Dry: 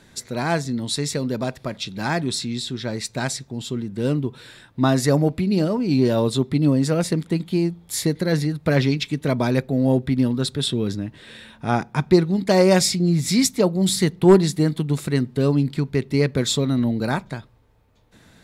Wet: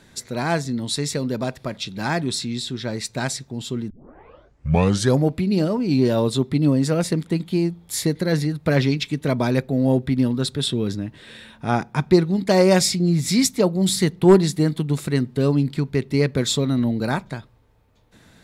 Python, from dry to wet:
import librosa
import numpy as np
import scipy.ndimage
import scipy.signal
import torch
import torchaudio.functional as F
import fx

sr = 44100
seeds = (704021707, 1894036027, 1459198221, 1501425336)

y = fx.edit(x, sr, fx.tape_start(start_s=3.9, length_s=1.34), tone=tone)